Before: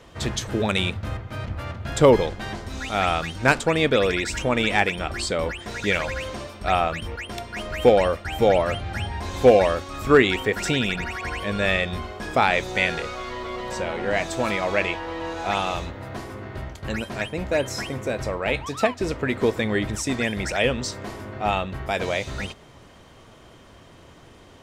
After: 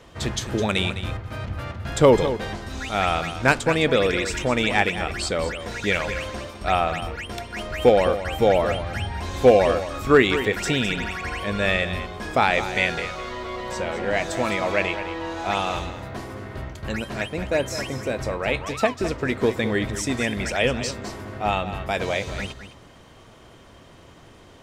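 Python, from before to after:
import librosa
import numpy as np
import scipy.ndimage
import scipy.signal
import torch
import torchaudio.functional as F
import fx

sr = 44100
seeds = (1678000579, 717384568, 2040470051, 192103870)

y = x + 10.0 ** (-11.5 / 20.0) * np.pad(x, (int(209 * sr / 1000.0), 0))[:len(x)]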